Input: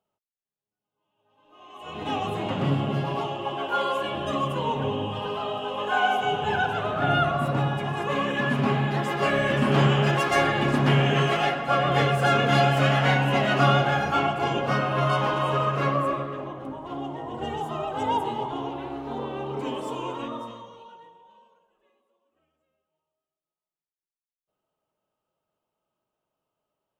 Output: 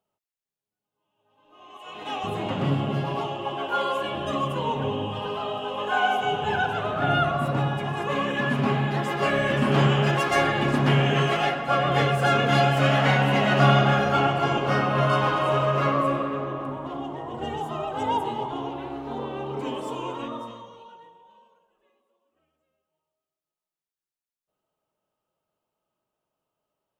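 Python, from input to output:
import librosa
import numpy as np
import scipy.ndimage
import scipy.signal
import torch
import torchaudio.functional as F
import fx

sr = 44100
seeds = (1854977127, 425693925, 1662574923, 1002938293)

y = fx.highpass(x, sr, hz=680.0, slope=6, at=(1.77, 2.24))
y = fx.reverb_throw(y, sr, start_s=12.79, length_s=4.03, rt60_s=2.8, drr_db=4.0)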